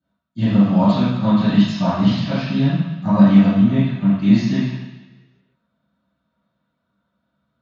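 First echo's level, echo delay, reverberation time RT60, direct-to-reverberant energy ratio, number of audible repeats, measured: no echo, no echo, 1.1 s, -15.0 dB, no echo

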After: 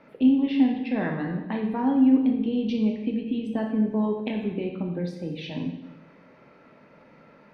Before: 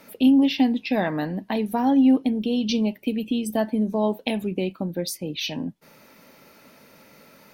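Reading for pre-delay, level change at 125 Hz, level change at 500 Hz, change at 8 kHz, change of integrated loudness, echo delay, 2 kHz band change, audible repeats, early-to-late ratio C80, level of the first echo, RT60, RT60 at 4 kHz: 8 ms, 0.0 dB, -4.0 dB, under -20 dB, -2.0 dB, no echo, -4.5 dB, no echo, 7.0 dB, no echo, 1.0 s, 0.95 s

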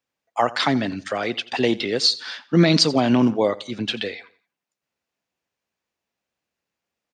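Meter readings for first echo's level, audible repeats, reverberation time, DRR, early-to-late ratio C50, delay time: -19.5 dB, 2, no reverb, no reverb, no reverb, 86 ms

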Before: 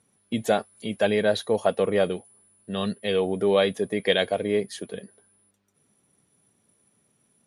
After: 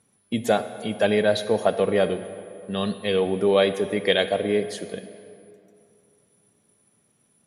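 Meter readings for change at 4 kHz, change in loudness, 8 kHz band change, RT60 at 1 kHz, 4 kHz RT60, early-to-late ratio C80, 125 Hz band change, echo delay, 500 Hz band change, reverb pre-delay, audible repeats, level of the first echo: +1.5 dB, +2.0 dB, +1.5 dB, 2.6 s, 1.6 s, 12.5 dB, +2.0 dB, no echo, +2.0 dB, 37 ms, no echo, no echo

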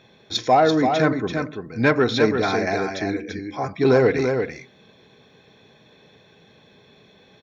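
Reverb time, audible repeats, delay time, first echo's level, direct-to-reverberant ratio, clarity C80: no reverb, 1, 338 ms, -6.0 dB, no reverb, no reverb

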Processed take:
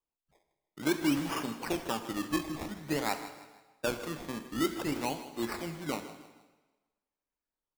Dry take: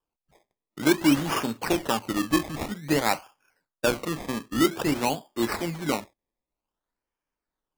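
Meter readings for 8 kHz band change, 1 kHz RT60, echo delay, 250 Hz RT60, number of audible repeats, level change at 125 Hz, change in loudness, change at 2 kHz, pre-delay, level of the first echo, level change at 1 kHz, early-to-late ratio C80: -8.0 dB, 1.2 s, 158 ms, 1.1 s, 3, -8.0 dB, -8.0 dB, -8.0 dB, 36 ms, -15.0 dB, -8.0 dB, 10.5 dB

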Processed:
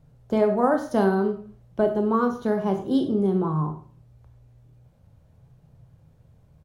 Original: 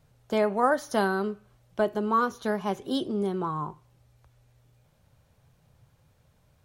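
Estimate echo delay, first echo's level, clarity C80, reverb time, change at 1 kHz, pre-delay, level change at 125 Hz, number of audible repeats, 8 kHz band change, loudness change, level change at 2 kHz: 96 ms, -16.5 dB, 13.0 dB, 0.40 s, 0.0 dB, 21 ms, +9.0 dB, 1, no reading, +4.5 dB, -3.0 dB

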